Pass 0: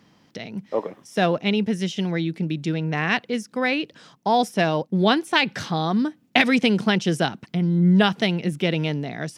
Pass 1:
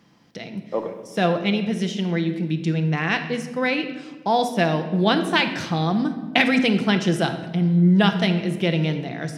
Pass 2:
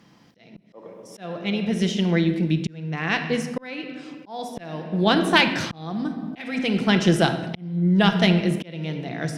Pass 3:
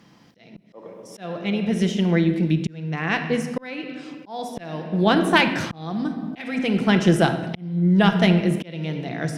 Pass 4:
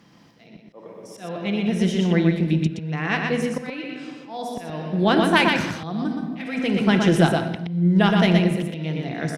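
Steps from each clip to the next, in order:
shoebox room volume 1000 m³, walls mixed, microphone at 0.78 m; gain -1 dB
auto swell 0.696 s; added harmonics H 4 -28 dB, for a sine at -3.5 dBFS; gain +2.5 dB
dynamic EQ 4300 Hz, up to -6 dB, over -41 dBFS, Q 0.98; gain +1.5 dB
echo 0.121 s -4 dB; gain -1 dB

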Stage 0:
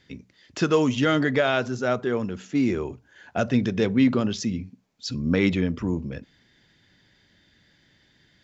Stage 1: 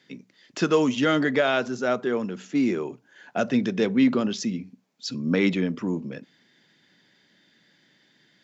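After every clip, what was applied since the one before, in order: HPF 160 Hz 24 dB/oct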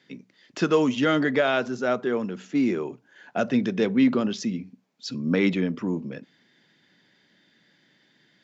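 high shelf 6800 Hz -7.5 dB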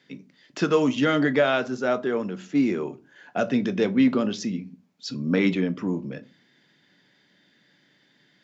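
shoebox room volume 120 m³, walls furnished, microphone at 0.36 m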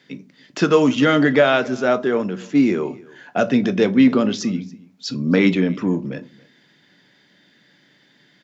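echo 0.28 s -23 dB; gain +6 dB

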